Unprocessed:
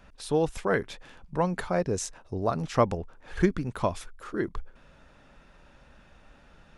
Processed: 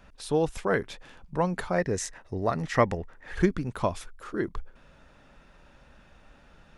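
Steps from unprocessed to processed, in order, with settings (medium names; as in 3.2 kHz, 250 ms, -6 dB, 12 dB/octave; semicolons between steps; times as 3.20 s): 1.78–3.35 s: peaking EQ 1.9 kHz +15 dB 0.28 oct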